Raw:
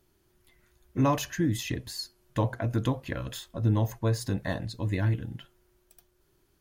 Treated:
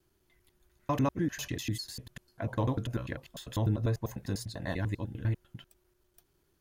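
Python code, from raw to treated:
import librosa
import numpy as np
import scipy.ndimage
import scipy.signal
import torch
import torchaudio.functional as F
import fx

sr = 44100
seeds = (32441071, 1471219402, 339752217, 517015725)

y = fx.block_reorder(x, sr, ms=99.0, group=3)
y = y * librosa.db_to_amplitude(-4.0)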